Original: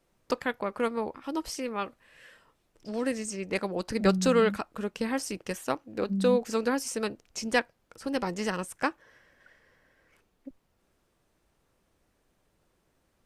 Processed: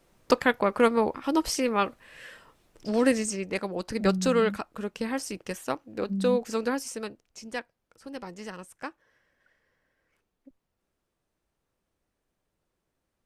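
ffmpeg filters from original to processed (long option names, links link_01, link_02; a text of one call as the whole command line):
ffmpeg -i in.wav -af "volume=7.5dB,afade=type=out:start_time=3.1:duration=0.43:silence=0.398107,afade=type=out:start_time=6.7:duration=0.55:silence=0.375837" out.wav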